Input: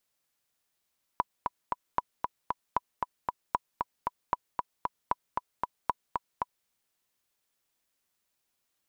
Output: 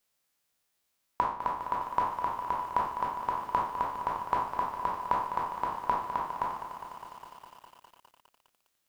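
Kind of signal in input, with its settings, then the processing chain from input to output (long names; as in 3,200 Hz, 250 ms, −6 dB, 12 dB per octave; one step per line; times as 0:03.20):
click track 230 BPM, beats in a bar 3, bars 7, 985 Hz, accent 3.5 dB −12 dBFS
peak hold with a decay on every bin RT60 0.53 s
mains-hum notches 50/100/150/200/250/300/350 Hz
feedback echo at a low word length 204 ms, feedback 80%, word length 9 bits, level −10 dB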